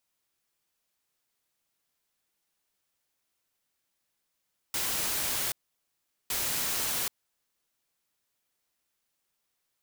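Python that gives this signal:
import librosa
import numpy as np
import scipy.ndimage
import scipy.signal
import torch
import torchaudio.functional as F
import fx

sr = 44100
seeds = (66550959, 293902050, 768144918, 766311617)

y = fx.noise_burst(sr, seeds[0], colour='white', on_s=0.78, off_s=0.78, bursts=2, level_db=-30.5)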